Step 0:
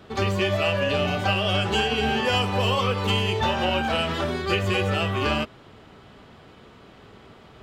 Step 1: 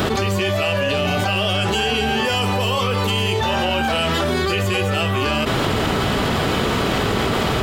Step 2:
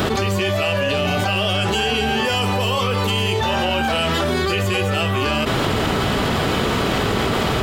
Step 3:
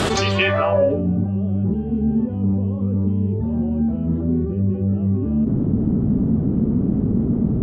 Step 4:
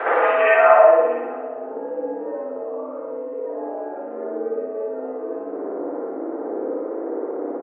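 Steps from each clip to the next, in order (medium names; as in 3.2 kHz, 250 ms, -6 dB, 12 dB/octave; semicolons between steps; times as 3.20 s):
treble shelf 7.8 kHz +11.5 dB; level flattener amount 100%
no audible change
low-pass sweep 9.1 kHz -> 230 Hz, 0.07–1.08 s
delay 641 ms -22.5 dB; mistuned SSB +64 Hz 420–2000 Hz; spring tank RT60 1.1 s, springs 57 ms, chirp 75 ms, DRR -9 dB; trim -2 dB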